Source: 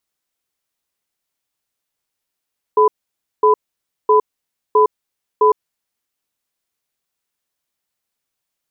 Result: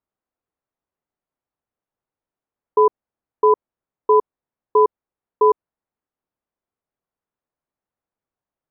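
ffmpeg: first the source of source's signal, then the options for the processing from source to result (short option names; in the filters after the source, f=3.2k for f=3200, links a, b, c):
-f lavfi -i "aevalsrc='0.282*(sin(2*PI*427*t)+sin(2*PI*1000*t))*clip(min(mod(t,0.66),0.11-mod(t,0.66))/0.005,0,1)':d=3.28:s=44100"
-af "lowpass=1.1k"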